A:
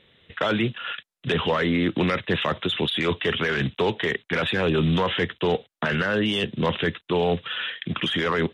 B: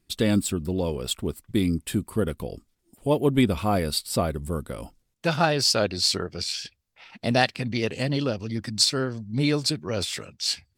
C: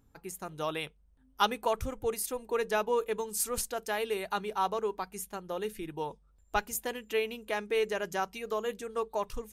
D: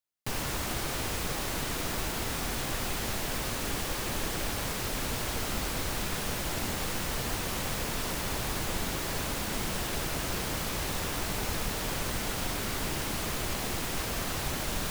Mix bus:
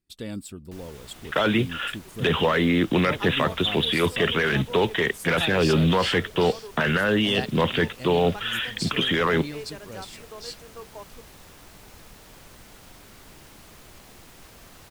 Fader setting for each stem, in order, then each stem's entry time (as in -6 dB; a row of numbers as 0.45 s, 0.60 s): +1.5 dB, -12.5 dB, -9.5 dB, -15.5 dB; 0.95 s, 0.00 s, 1.80 s, 0.45 s